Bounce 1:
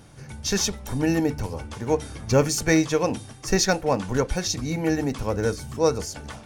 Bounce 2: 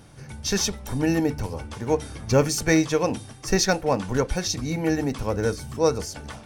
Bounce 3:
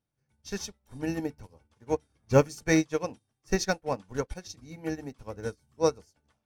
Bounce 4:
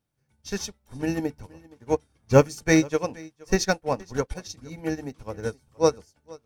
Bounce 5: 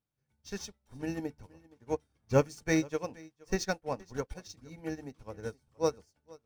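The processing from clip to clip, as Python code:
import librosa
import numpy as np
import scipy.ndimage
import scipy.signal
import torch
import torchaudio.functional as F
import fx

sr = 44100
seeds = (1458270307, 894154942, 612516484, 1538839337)

y1 = fx.notch(x, sr, hz=6800.0, q=20.0)
y2 = fx.upward_expand(y1, sr, threshold_db=-39.0, expansion=2.5)
y3 = y2 + 10.0 ** (-23.0 / 20.0) * np.pad(y2, (int(470 * sr / 1000.0), 0))[:len(y2)]
y3 = F.gain(torch.from_numpy(y3), 4.5).numpy()
y4 = scipy.ndimage.median_filter(y3, 3, mode='constant')
y4 = F.gain(torch.from_numpy(y4), -9.0).numpy()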